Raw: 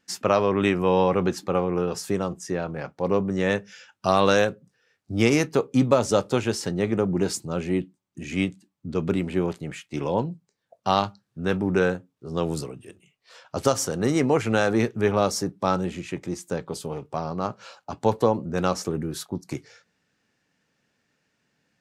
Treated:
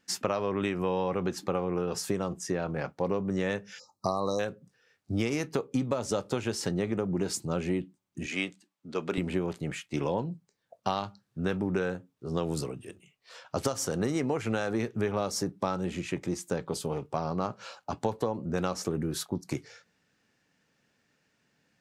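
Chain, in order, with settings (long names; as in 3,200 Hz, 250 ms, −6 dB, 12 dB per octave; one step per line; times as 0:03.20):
0:03.79–0:04.39: time-frequency box erased 1,300–3,800 Hz
0:08.26–0:09.18: meter weighting curve A
downward compressor 10 to 1, threshold −25 dBFS, peak gain reduction 12.5 dB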